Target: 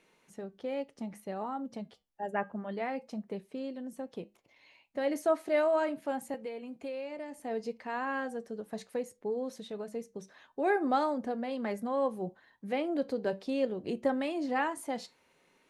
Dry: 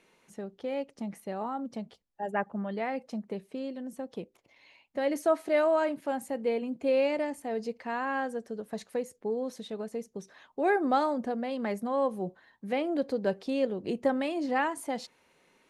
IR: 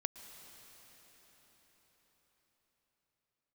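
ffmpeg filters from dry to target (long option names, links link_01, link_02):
-filter_complex "[0:a]flanger=delay=6.5:depth=1.3:regen=-81:speed=0.63:shape=sinusoidal,asettb=1/sr,asplit=3[link_01][link_02][link_03];[link_01]atrim=end=6.344[link_04];[link_02]atrim=start=6.34:end=7.4,asetpts=PTS-STARTPTS,afade=type=in:duration=0.004:curve=qsin,afade=type=out:start_time=1.056:duration=0.004:curve=qsin,acrossover=split=660|1500[link_05][link_06][link_07];[link_05]acompressor=threshold=-44dB:ratio=4[link_08];[link_06]acompressor=threshold=-50dB:ratio=4[link_09];[link_07]acompressor=threshold=-55dB:ratio=4[link_10];[link_08][link_09][link_10]amix=inputs=3:normalize=0[link_11];[link_03]atrim=start=7.396[link_12];[link_04][link_11]acrossfade=duration=0.004:curve1=hsin:curve2=qsin[link_13];[link_13][link_12]acrossfade=duration=0.004:curve1=qsin:curve2=hsin,volume=2dB"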